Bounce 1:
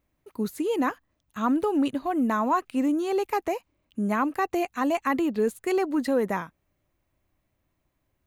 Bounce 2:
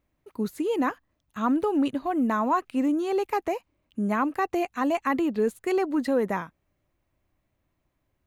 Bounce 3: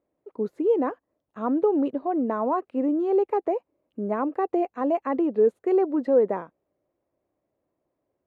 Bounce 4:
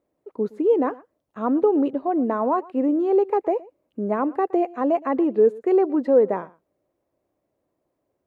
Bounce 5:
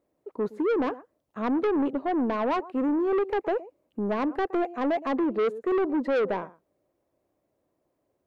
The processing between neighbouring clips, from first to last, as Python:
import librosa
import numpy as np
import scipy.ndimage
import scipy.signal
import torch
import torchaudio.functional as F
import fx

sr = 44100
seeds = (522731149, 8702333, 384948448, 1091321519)

y1 = fx.high_shelf(x, sr, hz=5400.0, db=-5.0)
y2 = fx.bandpass_q(y1, sr, hz=480.0, q=1.8)
y2 = y2 * librosa.db_to_amplitude(6.5)
y3 = y2 + 10.0 ** (-22.0 / 20.0) * np.pad(y2, (int(117 * sr / 1000.0), 0))[:len(y2)]
y3 = y3 * librosa.db_to_amplitude(3.0)
y4 = 10.0 ** (-21.5 / 20.0) * np.tanh(y3 / 10.0 ** (-21.5 / 20.0))